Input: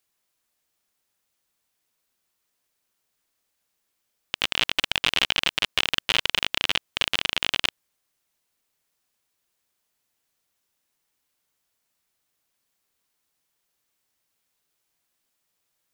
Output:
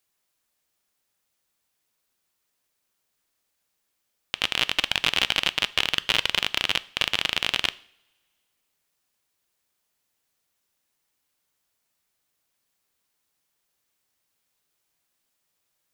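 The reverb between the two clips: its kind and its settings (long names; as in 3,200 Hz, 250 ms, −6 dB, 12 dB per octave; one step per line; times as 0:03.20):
coupled-rooms reverb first 0.54 s, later 2.1 s, from −24 dB, DRR 16 dB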